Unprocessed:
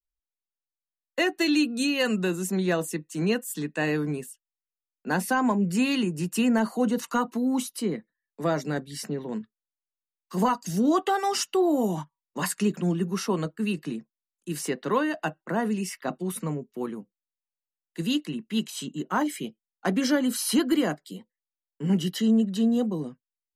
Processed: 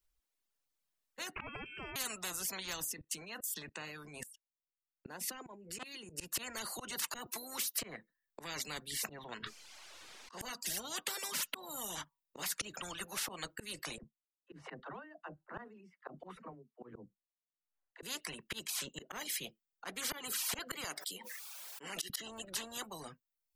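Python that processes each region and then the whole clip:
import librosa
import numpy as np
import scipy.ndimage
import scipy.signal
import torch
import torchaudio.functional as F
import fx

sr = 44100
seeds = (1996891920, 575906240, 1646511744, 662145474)

y = fx.chain(x, sr, fx.freq_invert(carrier_hz=2900),
    fx.pre_swell(db_per_s=26.0), at=(1.36, 1.96))
y = fx.chain(y, sr, fx.level_steps(step_db=21),
    fx.transformer_sat(knee_hz=880.0), at=(2.84, 6.1))
y = fx.chain(y, sr, fx.highpass(hz=330.0, slope=12),
    fx.high_shelf(hz=9200.0, db=11.5), at=(7.26, 7.79))
y = fx.chain(y, sr, fx.lowpass(hz=5400.0, slope=12),
    fx.low_shelf(hz=190.0, db=-10.0),
    fx.sustainer(db_per_s=29.0), at=(9.24, 10.41))
y = fx.chain(y, sr, fx.lowpass(hz=1300.0, slope=12),
    fx.dispersion(late='lows', ms=54.0, hz=330.0),
    fx.tremolo_db(hz=1.3, depth_db=25), at=(13.98, 18.03))
y = fx.chain(y, sr, fx.highpass(hz=630.0, slope=12),
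    fx.pre_swell(db_per_s=26.0), at=(20.84, 22.1))
y = fx.dereverb_blind(y, sr, rt60_s=0.74)
y = fx.auto_swell(y, sr, attack_ms=224.0)
y = fx.spectral_comp(y, sr, ratio=10.0)
y = F.gain(torch.from_numpy(y), -7.5).numpy()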